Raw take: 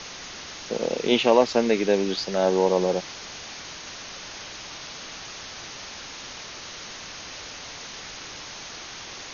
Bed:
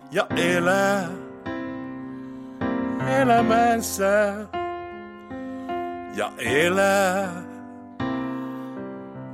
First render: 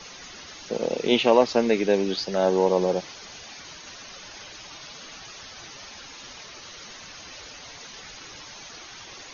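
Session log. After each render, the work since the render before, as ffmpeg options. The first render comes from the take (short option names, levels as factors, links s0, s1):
-af "afftdn=nr=10:nf=-40"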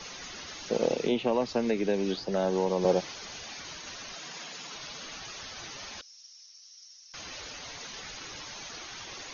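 -filter_complex "[0:a]asettb=1/sr,asplit=3[s0][s1][s2];[s0]atrim=end=0.914[s3];[s1]atrim=start=0.91:end=2.85,asetpts=PTS-STARTPTS,afade=t=in:d=0.004:c=qsin,afade=t=out:st=1.936:d=0.004:c=qsin,acrossover=split=220|1200[s4][s5][s6];[s4]acompressor=threshold=0.0224:ratio=4[s7];[s5]acompressor=threshold=0.0447:ratio=4[s8];[s6]acompressor=threshold=0.01:ratio=4[s9];[s7][s8][s9]amix=inputs=3:normalize=0[s10];[s2]atrim=start=2.846[s11];[s3][s10]acrossfade=d=0.004:c1=hsin:c2=qsin[s12];[s12][s11]acrossfade=d=0.004:c1=qsin:c2=hsin,asettb=1/sr,asplit=3[s13][s14][s15];[s13]atrim=end=4.154[s16];[s14]atrim=start=4.15:end=4.76,asetpts=PTS-STARTPTS,afade=t=in:d=0.004:c=qsin,afade=t=out:st=0.606:d=0.004:c=qsin,afreqshift=130[s17];[s15]atrim=start=4.756[s18];[s16][s17]acrossfade=d=0.004:c1=hsin:c2=qsin[s19];[s19][s18]acrossfade=d=0.004:c1=qsin:c2=hsin,asettb=1/sr,asplit=3[s20][s21][s22];[s20]atrim=end=6.014[s23];[s21]atrim=start=6.01:end=7.14,asetpts=PTS-STARTPTS,afade=t=in:d=0.004:c=qsin,afade=t=out:st=1.126:d=0.004:c=qsin,bandpass=f=5500:t=q:w=10[s24];[s22]atrim=start=7.136[s25];[s23][s24]acrossfade=d=0.004:c1=hsin:c2=qsin[s26];[s26][s25]acrossfade=d=0.004:c1=qsin:c2=hsin"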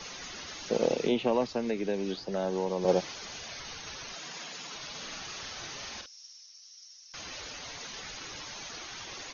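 -filter_complex "[0:a]asettb=1/sr,asplit=3[s0][s1][s2];[s0]atrim=end=3.484[s3];[s1]atrim=start=3.48:end=4.07,asetpts=PTS-STARTPTS,afade=t=in:d=0.004:c=qsin,afade=t=out:st=0.586:d=0.004:c=qsin,afreqshift=-150[s4];[s2]atrim=start=4.066[s5];[s3][s4]acrossfade=d=0.004:c1=hsin:c2=qsin[s6];[s6][s5]acrossfade=d=0.004:c1=qsin:c2=hsin,asplit=3[s7][s8][s9];[s7]afade=t=out:st=4.94:d=0.02[s10];[s8]asplit=2[s11][s12];[s12]adelay=48,volume=0.531[s13];[s11][s13]amix=inputs=2:normalize=0,afade=t=in:st=4.94:d=0.02,afade=t=out:st=6.38:d=0.02[s14];[s9]afade=t=in:st=6.38:d=0.02[s15];[s10][s14][s15]amix=inputs=3:normalize=0,asplit=3[s16][s17][s18];[s16]atrim=end=1.472[s19];[s17]atrim=start=1.468:end=2.882,asetpts=PTS-STARTPTS,volume=0.668[s20];[s18]atrim=start=2.878[s21];[s19][s20]acrossfade=d=0.004:c1=hsin:c2=hsin[s22];[s22][s21]acrossfade=d=0.004:c1=hsin:c2=hsin"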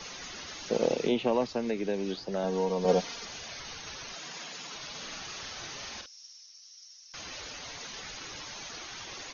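-filter_complex "[0:a]asettb=1/sr,asplit=3[s0][s1][s2];[s0]atrim=end=2.434[s3];[s1]atrim=start=2.43:end=3.25,asetpts=PTS-STARTPTS,afade=t=in:d=0.004:c=qsin,afade=t=out:st=0.816:d=0.004:c=qsin,aecho=1:1:4.3:0.65,atrim=end_sample=36162[s4];[s2]atrim=start=3.246[s5];[s3][s4]acrossfade=d=0.004:c1=hsin:c2=qsin[s6];[s6][s5]acrossfade=d=0.004:c1=qsin:c2=hsin"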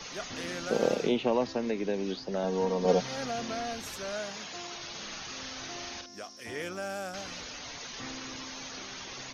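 -filter_complex "[1:a]volume=0.133[s0];[0:a][s0]amix=inputs=2:normalize=0"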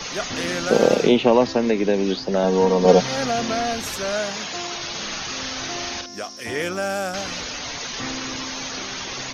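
-af "volume=3.76,alimiter=limit=0.794:level=0:latency=1"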